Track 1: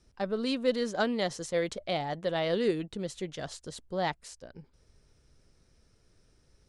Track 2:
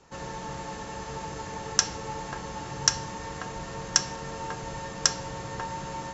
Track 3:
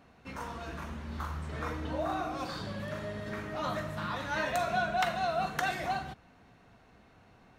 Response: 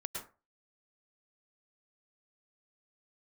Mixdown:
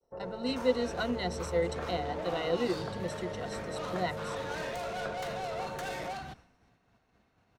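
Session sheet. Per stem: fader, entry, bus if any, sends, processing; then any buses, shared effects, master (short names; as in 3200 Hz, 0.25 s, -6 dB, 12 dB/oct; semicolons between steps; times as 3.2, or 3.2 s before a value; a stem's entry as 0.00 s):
-7.5 dB, 0.00 s, no send, ripple EQ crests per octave 2, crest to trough 17 dB
-10.0 dB, 0.00 s, no send, LPF 1300 Hz 24 dB/oct; band shelf 520 Hz +12 dB 1.1 oct
+0.5 dB, 0.20 s, no send, bell 5700 Hz +3 dB 0.87 oct; tube stage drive 37 dB, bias 0.25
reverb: off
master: expander -51 dBFS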